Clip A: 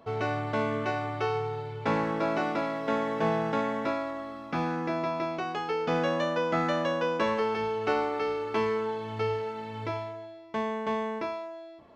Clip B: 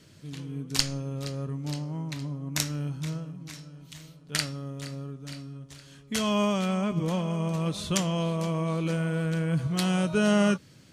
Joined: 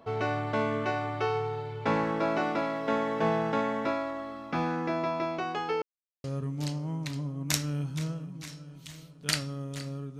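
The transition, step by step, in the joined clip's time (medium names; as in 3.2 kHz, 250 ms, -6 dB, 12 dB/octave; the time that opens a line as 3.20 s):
clip A
5.82–6.24 s: mute
6.24 s: go over to clip B from 1.30 s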